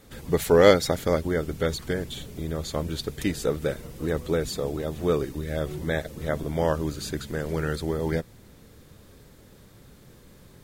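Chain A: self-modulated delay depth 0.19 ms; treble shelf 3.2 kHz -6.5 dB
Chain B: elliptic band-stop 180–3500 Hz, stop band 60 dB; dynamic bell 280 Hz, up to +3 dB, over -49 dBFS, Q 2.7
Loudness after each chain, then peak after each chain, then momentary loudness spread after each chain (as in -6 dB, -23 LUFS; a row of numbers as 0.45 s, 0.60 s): -27.0 LUFS, -33.5 LUFS; -4.5 dBFS, -15.5 dBFS; 11 LU, 6 LU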